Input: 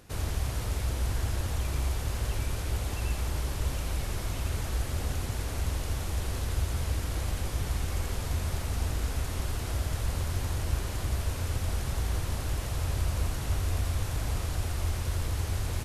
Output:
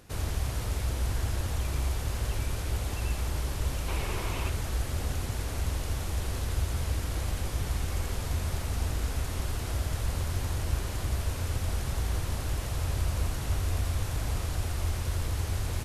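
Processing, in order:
0:03.88–0:04.50: graphic EQ with 15 bands 400 Hz +6 dB, 1,000 Hz +7 dB, 2,500 Hz +7 dB

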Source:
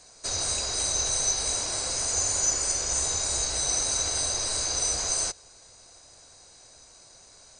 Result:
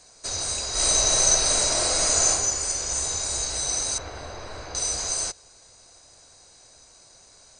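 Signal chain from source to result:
0:00.71–0:02.28: thrown reverb, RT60 0.96 s, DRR −7.5 dB
0:03.98–0:04.75: low-pass filter 2,000 Hz 12 dB per octave

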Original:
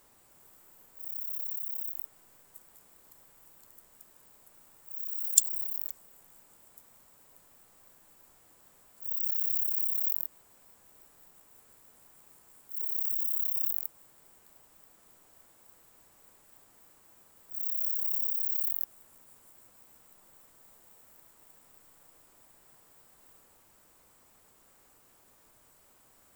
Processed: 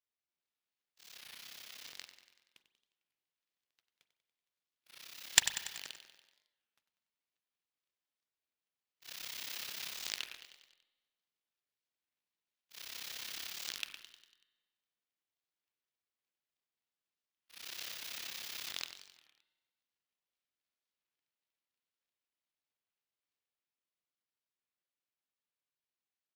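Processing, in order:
running median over 5 samples
meter weighting curve D
noise gate −54 dBFS, range −12 dB
parametric band 61 Hz +5 dB 2.7 octaves
power curve on the samples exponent 1.4
repeating echo 95 ms, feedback 57%, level −11 dB
spring reverb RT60 1.2 s, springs 39 ms, chirp 30 ms, DRR 12.5 dB
wow of a warped record 33 1/3 rpm, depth 250 cents

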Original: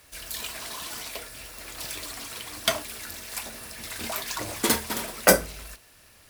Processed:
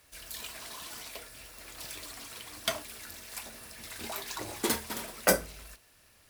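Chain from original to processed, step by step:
0:04.02–0:04.70: hollow resonant body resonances 380/830/3,900 Hz, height 8 dB
level −7 dB

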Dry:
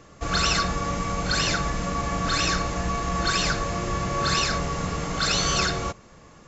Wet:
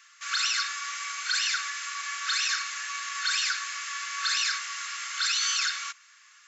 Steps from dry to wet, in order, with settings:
Butterworth high-pass 1,400 Hz 36 dB per octave
brickwall limiter −20 dBFS, peak gain reduction 7 dB
level +2.5 dB

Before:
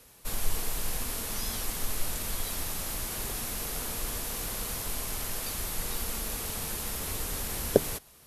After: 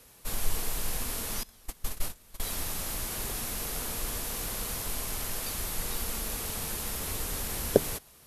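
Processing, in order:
0:01.43–0:02.40: noise gate −27 dBFS, range −23 dB

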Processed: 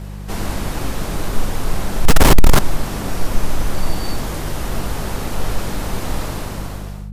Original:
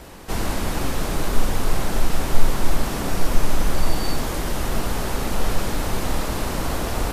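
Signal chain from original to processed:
fade-out on the ending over 0.88 s
0:02.05–0:02.59: leveller curve on the samples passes 5
hum with harmonics 50 Hz, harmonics 4, −30 dBFS −4 dB per octave

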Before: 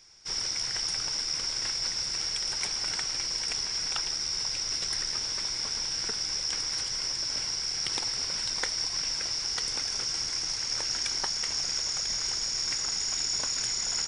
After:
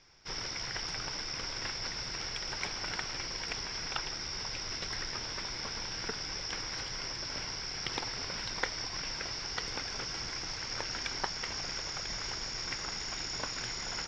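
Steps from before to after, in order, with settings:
high-frequency loss of the air 220 metres
level +2.5 dB

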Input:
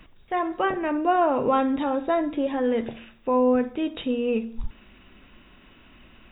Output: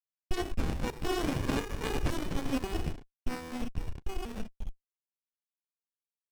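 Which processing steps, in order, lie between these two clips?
pitch shifter gated in a rhythm +8 semitones, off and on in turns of 530 ms
source passing by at 0:01.79, 6 m/s, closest 2.5 metres
graphic EQ with 15 bands 160 Hz −11 dB, 400 Hz +12 dB, 2,500 Hz +4 dB
leveller curve on the samples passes 5
voice inversion scrambler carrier 3,300 Hz
slack as between gear wheels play −29 dBFS
formant filter a
high-shelf EQ 2,300 Hz +11 dB
windowed peak hold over 65 samples

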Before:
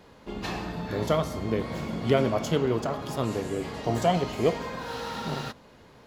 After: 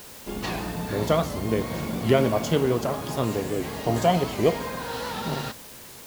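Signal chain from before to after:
notch filter 1,300 Hz, Q 21
in parallel at −8.5 dB: bit-depth reduction 6 bits, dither triangular
on the sum: wow of a warped record 78 rpm, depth 100 cents

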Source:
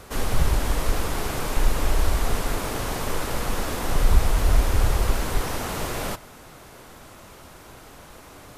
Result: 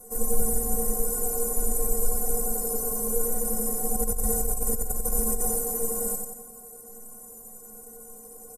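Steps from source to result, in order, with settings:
stiff-string resonator 220 Hz, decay 0.3 s, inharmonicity 0.03
on a send: repeating echo 91 ms, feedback 49%, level −4.5 dB
0:03.94–0:05.59: on the sum: compressor whose output falls as the input rises −33 dBFS, ratio −1
drawn EQ curve 250 Hz 0 dB, 490 Hz +5 dB, 3,400 Hz −29 dB, 8,100 Hz +14 dB
level +7.5 dB

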